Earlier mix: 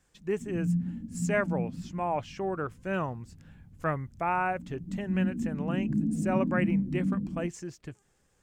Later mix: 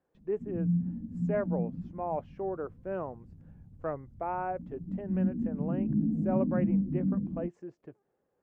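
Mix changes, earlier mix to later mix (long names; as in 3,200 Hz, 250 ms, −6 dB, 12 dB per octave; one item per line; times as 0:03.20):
speech: add resonant band-pass 500 Hz, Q 1.2
master: add high-shelf EQ 2,900 Hz −8.5 dB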